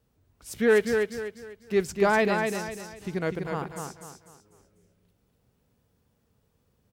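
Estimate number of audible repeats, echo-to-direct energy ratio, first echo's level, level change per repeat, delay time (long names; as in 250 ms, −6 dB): 4, −4.5 dB, −5.0 dB, −9.0 dB, 248 ms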